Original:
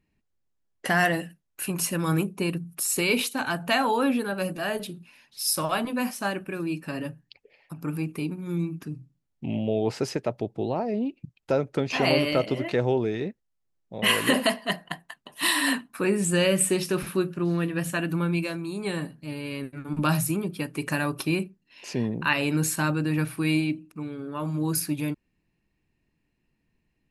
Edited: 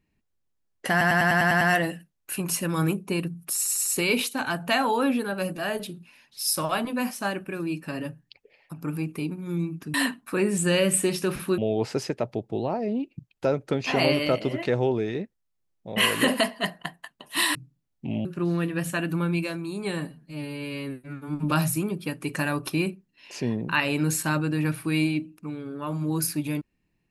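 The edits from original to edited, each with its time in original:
0.91 s: stutter 0.10 s, 8 plays
2.85 s: stutter 0.10 s, 4 plays
8.94–9.64 s: swap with 15.61–17.25 s
19.10–20.04 s: stretch 1.5×

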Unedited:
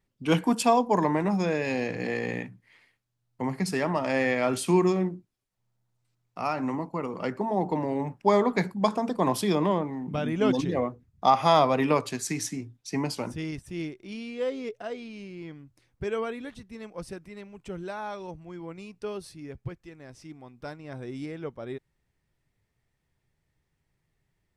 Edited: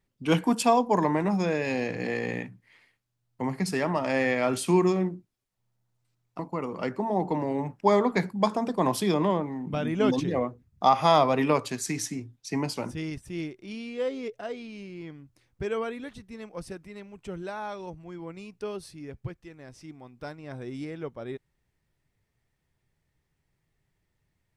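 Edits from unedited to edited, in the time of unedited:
6.39–6.80 s: delete

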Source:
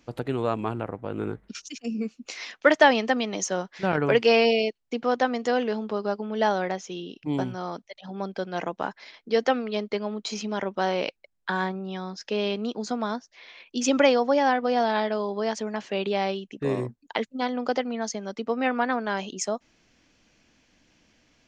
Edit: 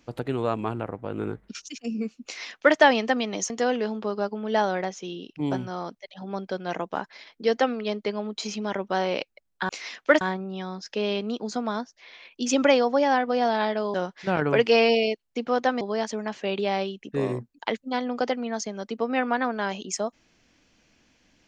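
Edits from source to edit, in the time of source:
2.25–2.77 s: copy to 11.56 s
3.50–5.37 s: move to 15.29 s

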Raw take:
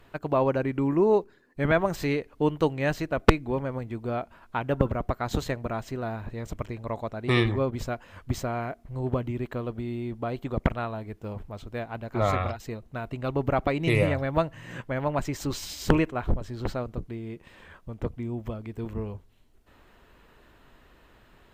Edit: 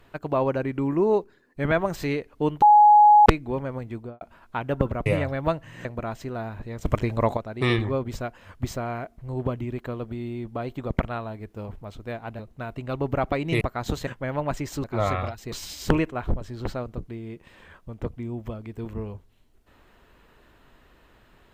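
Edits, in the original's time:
2.62–3.26 s: bleep 837 Hz -10 dBFS
3.96–4.21 s: studio fade out
5.06–5.52 s: swap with 13.96–14.75 s
6.52–7.04 s: gain +10 dB
12.06–12.74 s: move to 15.52 s

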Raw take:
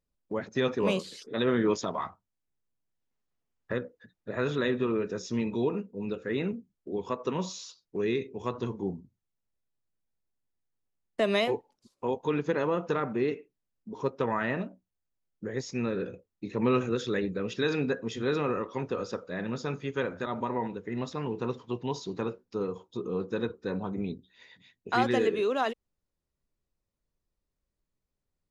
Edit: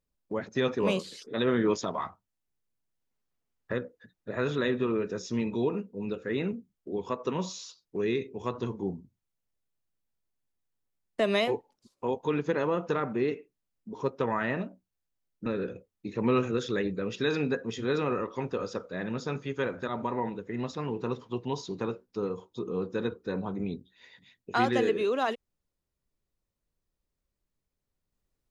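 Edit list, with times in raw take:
15.46–15.84 s: delete

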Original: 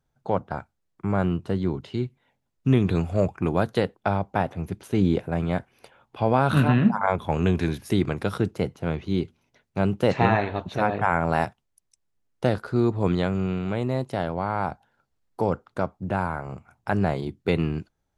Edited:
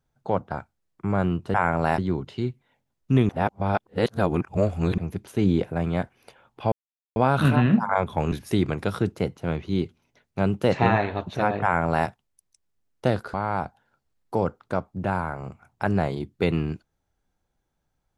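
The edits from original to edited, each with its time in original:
2.85–4.54 s: reverse
6.28 s: insert silence 0.44 s
7.44–7.71 s: delete
11.02–11.46 s: copy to 1.54 s
12.73–14.40 s: delete

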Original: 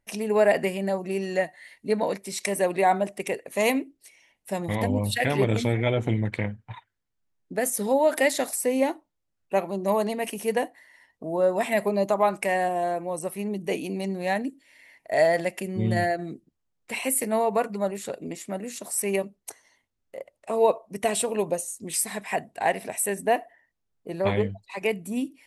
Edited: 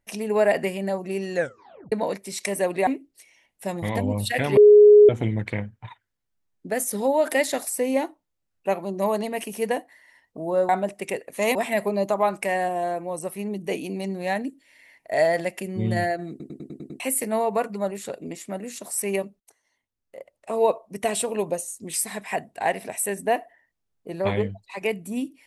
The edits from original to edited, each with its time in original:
1.35 s: tape stop 0.57 s
2.87–3.73 s: move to 11.55 s
5.43–5.95 s: bleep 417 Hz -7.5 dBFS
16.30 s: stutter in place 0.10 s, 7 plays
19.40–20.55 s: fade in, from -23.5 dB

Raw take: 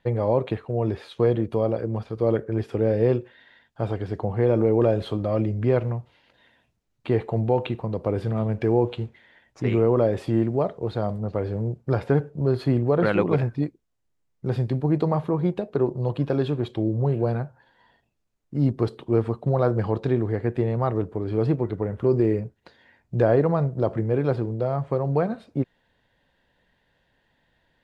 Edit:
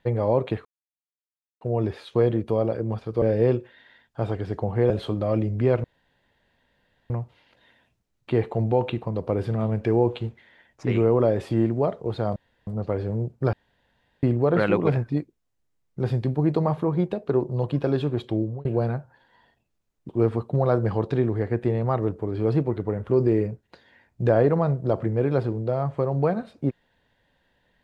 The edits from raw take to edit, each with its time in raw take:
0.65 s: insert silence 0.96 s
2.26–2.83 s: delete
4.51–4.93 s: delete
5.87 s: insert room tone 1.26 s
11.13 s: insert room tone 0.31 s
11.99–12.69 s: room tone
16.84–17.11 s: fade out
18.55–19.02 s: delete

